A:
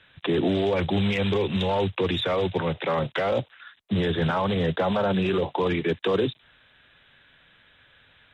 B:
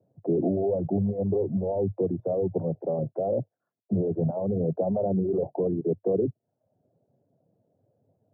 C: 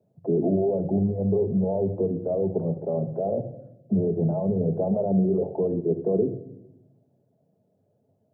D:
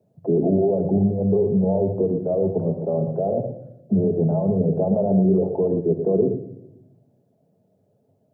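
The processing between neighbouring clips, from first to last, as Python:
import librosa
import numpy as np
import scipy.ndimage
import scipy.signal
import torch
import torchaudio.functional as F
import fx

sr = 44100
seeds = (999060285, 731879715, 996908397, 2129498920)

y1 = scipy.signal.sosfilt(scipy.signal.cheby1(4, 1.0, [100.0, 690.0], 'bandpass', fs=sr, output='sos'), x)
y1 = fx.dereverb_blind(y1, sr, rt60_s=0.53)
y2 = fx.room_shoebox(y1, sr, seeds[0], volume_m3=2600.0, walls='furnished', distance_m=1.4)
y3 = y2 + 10.0 ** (-9.0 / 20.0) * np.pad(y2, (int(117 * sr / 1000.0), 0))[:len(y2)]
y3 = y3 * 10.0 ** (3.5 / 20.0)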